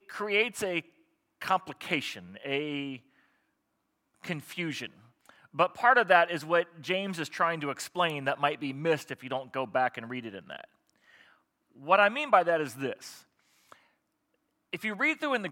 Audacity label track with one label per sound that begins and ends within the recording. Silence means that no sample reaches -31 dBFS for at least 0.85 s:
4.240000	10.610000	sound
11.880000	12.930000	sound